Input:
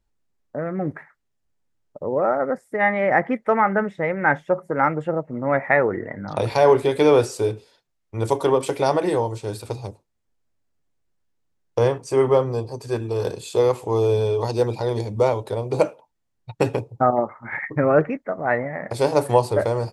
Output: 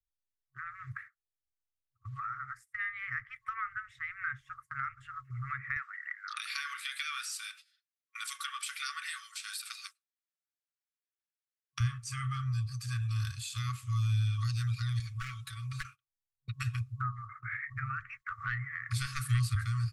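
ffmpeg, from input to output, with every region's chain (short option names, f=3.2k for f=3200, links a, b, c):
-filter_complex "[0:a]asettb=1/sr,asplit=3[a][b][c];[a]atrim=end=5.764[d];[b]atrim=start=5.76:end=11.8,asetpts=PTS-STARTPTS,afade=t=in:d=0.004:c=qsin,afade=t=out:st=6.036:d=0.004:c=qsin,highpass=f=1.3k:w=0.5412,highpass=f=1.3k:w=1.3066,equalizer=f=6.7k:t=o:w=0.23:g=-4.5,acontrast=84[e];[c]atrim=start=11.796[f];[d][e]acrossfade=d=0.004:c1=hsin:c2=qsin[g];[g][f]acrossfade=d=0.004:c1=qsin:c2=hsin,asettb=1/sr,asplit=3[h][i][j];[h]atrim=end=14.994[k];[i]atrim=start=14.99:end=15.85,asetpts=PTS-STARTPTS,afade=t=in:d=0.004:c=qsin,afade=t=out:st=0.856:d=0.004:c=qsin,aeval=exprs='0.251*(abs(mod(val(0)/0.251+3,4)-2)-1)':c=same,aecho=1:1:5.3:0.74,atrim=end_sample=37926,acompressor=threshold=-31dB:ratio=2:attack=3.2:release=140:knee=1:detection=peak[l];[j]atrim=start=15.846[m];[k][l]acrossfade=d=0.004:c1=hsin:c2=qsin[n];[n][m]acrossfade=d=0.004:c1=qsin:c2=hsin,asettb=1/sr,asplit=3[o][p][q];[o]atrim=end=18.224[r];[p]atrim=start=18.22:end=19.55,asetpts=PTS-STARTPTS,afade=t=in:d=0.004:c=qsin,afade=t=out:st=1.326:d=0.004:c=qsin,highpass=110,acontrast=64[s];[q]atrim=start=19.546[t];[r][s]acrossfade=d=0.004:c1=hsin:c2=qsin[u];[u][t]acrossfade=d=0.004:c1=qsin:c2=hsin,afftfilt=real='re*(1-between(b*sr/4096,130,1100))':imag='im*(1-between(b*sr/4096,130,1100))':win_size=4096:overlap=0.75,agate=range=-20dB:threshold=-46dB:ratio=16:detection=peak,acrossover=split=120[v][w];[w]acompressor=threshold=-39dB:ratio=3[x];[v][x]amix=inputs=2:normalize=0"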